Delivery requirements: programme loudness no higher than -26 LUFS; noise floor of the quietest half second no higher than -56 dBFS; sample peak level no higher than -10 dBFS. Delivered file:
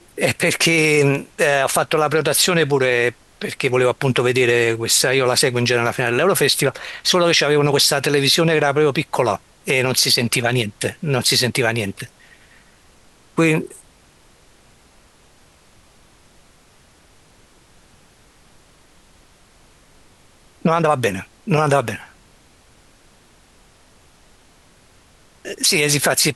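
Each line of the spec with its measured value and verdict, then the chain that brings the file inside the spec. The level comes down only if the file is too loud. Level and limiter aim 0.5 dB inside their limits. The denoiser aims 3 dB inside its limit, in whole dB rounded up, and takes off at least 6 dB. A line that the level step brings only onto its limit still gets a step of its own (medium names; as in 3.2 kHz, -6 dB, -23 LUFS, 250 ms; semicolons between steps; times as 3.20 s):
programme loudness -17.0 LUFS: fail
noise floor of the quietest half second -52 dBFS: fail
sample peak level -4.5 dBFS: fail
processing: trim -9.5 dB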